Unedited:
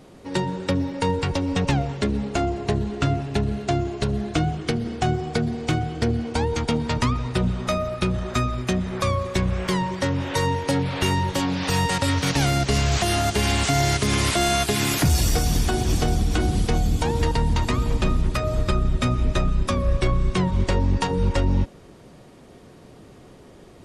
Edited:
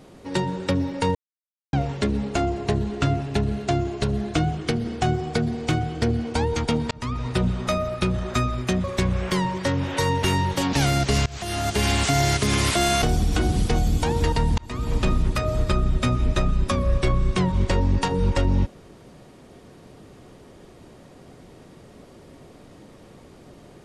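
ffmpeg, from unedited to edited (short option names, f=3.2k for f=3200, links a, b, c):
-filter_complex "[0:a]asplit=10[a][b][c][d][e][f][g][h][i][j];[a]atrim=end=1.15,asetpts=PTS-STARTPTS,afade=t=out:st=1.146:d=0.004:c=hsin[k];[b]atrim=start=1.15:end=1.73,asetpts=PTS-STARTPTS,volume=0[l];[c]atrim=start=1.73:end=6.91,asetpts=PTS-STARTPTS,afade=t=in:d=0.004:c=hsin,afade=t=out:st=5.176:d=0.004:c=hsin[m];[d]atrim=start=6.91:end=8.842,asetpts=PTS-STARTPTS,afade=t=in:d=0.36[n];[e]atrim=start=9.208:end=10.602[o];[f]atrim=start=11.008:end=11.512[p];[g]atrim=start=12.328:end=12.86,asetpts=PTS-STARTPTS,afade=t=out:st=0.528:d=0.004:c=hsin:silence=0.0630957[q];[h]atrim=start=12.86:end=14.622,asetpts=PTS-STARTPTS,afade=t=in:d=0.56:silence=0.0630957[r];[i]atrim=start=16.008:end=17.57,asetpts=PTS-STARTPTS,afade=t=out:st=1.558:d=0.004:c=hsin[s];[j]atrim=start=17.57,asetpts=PTS-STARTPTS,afade=t=in:d=0.4[t];[k][l][m][n]concat=n=4:v=0:a=1[u];[u][o]acrossfade=d=0.004:c1=hsin:c2=hsin[v];[v][p]acrossfade=d=0.004:c1=hsin:c2=hsin[w];[q][r]concat=n=2:v=0:a=1[x];[w][x]acrossfade=d=0.004:c1=hsin:c2=hsin[y];[s][t]concat=n=2:v=0:a=1[z];[y][z]acrossfade=d=0.004:c1=hsin:c2=hsin"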